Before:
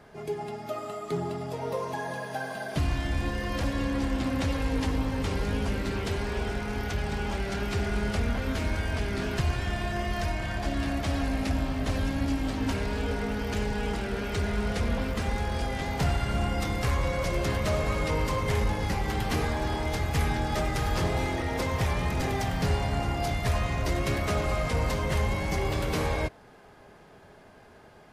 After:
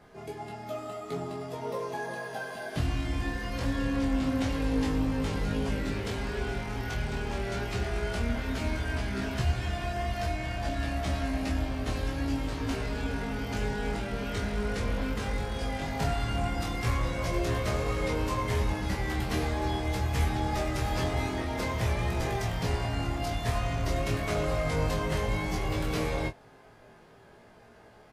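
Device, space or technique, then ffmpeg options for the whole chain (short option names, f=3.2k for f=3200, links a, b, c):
double-tracked vocal: -filter_complex "[0:a]asplit=2[a][b];[b]adelay=26,volume=-6dB[c];[a][c]amix=inputs=2:normalize=0,flanger=delay=15.5:depth=3.6:speed=0.1"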